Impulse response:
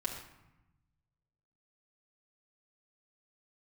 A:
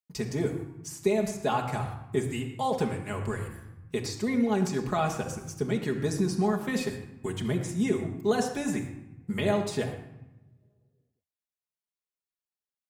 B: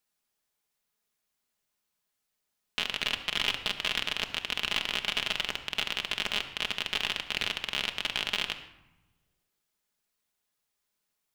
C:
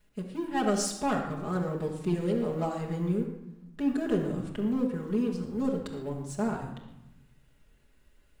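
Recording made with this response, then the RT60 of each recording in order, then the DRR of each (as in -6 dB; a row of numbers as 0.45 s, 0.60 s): C; 0.95 s, 1.0 s, 0.95 s; 0.5 dB, 5.0 dB, -4.0 dB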